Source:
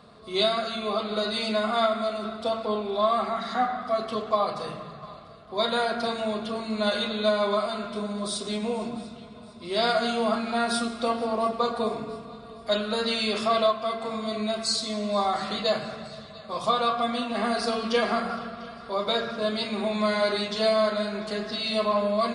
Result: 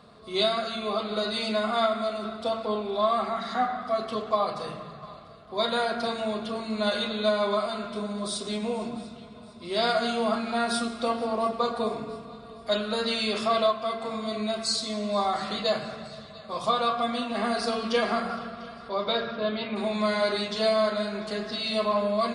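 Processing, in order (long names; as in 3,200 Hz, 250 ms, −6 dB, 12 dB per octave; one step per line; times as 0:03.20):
0:18.88–0:19.75: low-pass filter 6,400 Hz → 3,100 Hz 24 dB per octave
level −1 dB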